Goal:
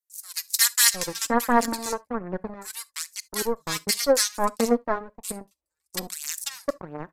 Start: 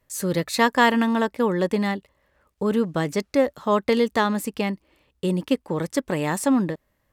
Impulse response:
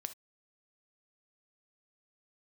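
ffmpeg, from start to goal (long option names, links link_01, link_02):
-filter_complex "[0:a]asettb=1/sr,asplit=3[link_01][link_02][link_03];[link_01]atrim=end=5.364[link_04];[link_02]atrim=start=5.36:end=5.94,asetpts=PTS-STARTPTS,afade=type=in:duration=0.004:curve=qsin,afade=type=out:start_time=0.576:duration=0.004:curve=qsin,acrossover=split=150[link_05][link_06];[link_06]acompressor=threshold=-43dB:ratio=3[link_07];[link_05][link_07]amix=inputs=2:normalize=0[link_08];[link_03]atrim=start=5.936[link_09];[link_04][link_08]acrossfade=duration=0.004:curve1=hsin:curve2=qsin[link_10];[link_10][link_09]acrossfade=duration=0.004:curve1=qsin:curve2=hsin,aeval=exprs='0.596*(cos(1*acos(clip(val(0)/0.596,-1,1)))-cos(1*PI/2))+0.0299*(cos(3*acos(clip(val(0)/0.596,-1,1)))-cos(3*PI/2))+0.075*(cos(7*acos(clip(val(0)/0.596,-1,1)))-cos(7*PI/2))':channel_layout=same,aphaser=in_gain=1:out_gain=1:delay=4.8:decay=0.52:speed=0.64:type=triangular,aresample=32000,aresample=44100,acrossover=split=1600[link_11][link_12];[link_11]adelay=710[link_13];[link_13][link_12]amix=inputs=2:normalize=0,asplit=2[link_14][link_15];[1:a]atrim=start_sample=2205[link_16];[link_15][link_16]afir=irnorm=-1:irlink=0,volume=-5dB[link_17];[link_14][link_17]amix=inputs=2:normalize=0,aexciter=amount=6.2:drive=7.8:freq=4600,volume=-4dB"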